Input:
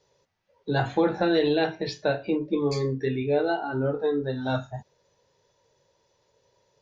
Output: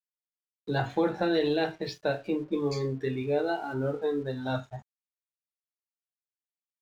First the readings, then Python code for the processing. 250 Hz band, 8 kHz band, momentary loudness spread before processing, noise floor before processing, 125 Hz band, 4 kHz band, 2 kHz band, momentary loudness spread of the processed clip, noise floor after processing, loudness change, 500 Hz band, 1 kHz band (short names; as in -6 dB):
-4.0 dB, n/a, 7 LU, -70 dBFS, -4.0 dB, -3.5 dB, -3.5 dB, 7 LU, under -85 dBFS, -4.0 dB, -4.0 dB, -4.0 dB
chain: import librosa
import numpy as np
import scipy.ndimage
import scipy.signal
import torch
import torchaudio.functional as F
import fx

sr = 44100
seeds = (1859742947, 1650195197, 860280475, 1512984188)

y = np.sign(x) * np.maximum(np.abs(x) - 10.0 ** (-52.5 / 20.0), 0.0)
y = y * librosa.db_to_amplitude(-3.5)